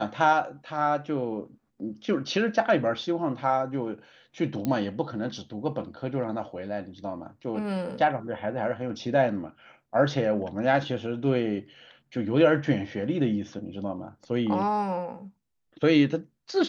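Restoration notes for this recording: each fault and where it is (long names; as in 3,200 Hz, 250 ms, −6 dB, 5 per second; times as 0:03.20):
0:04.65: click −16 dBFS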